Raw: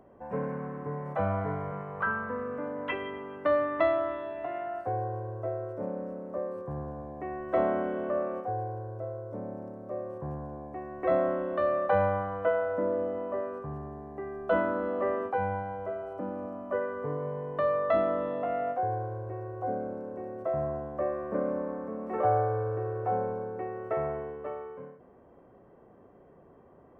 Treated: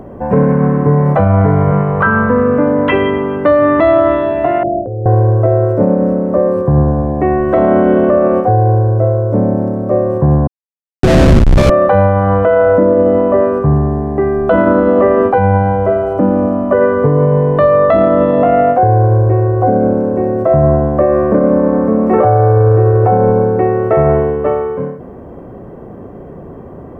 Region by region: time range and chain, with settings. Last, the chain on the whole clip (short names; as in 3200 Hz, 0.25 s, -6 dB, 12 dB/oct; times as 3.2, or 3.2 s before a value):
4.63–5.06 steep low-pass 650 Hz 72 dB/oct + negative-ratio compressor -42 dBFS
10.47–11.7 Schmitt trigger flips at -26.5 dBFS + air absorption 57 m
whole clip: low shelf 400 Hz +11 dB; maximiser +20 dB; gain -1 dB